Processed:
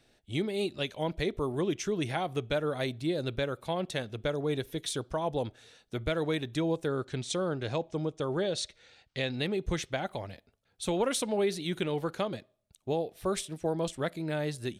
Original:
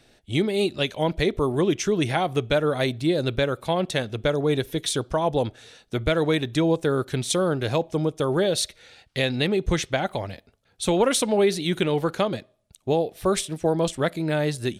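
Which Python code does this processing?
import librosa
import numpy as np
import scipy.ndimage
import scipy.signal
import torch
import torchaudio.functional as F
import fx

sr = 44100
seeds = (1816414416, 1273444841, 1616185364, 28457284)

y = fx.lowpass(x, sr, hz=8200.0, slope=24, at=(6.88, 9.38))
y = y * librosa.db_to_amplitude(-8.5)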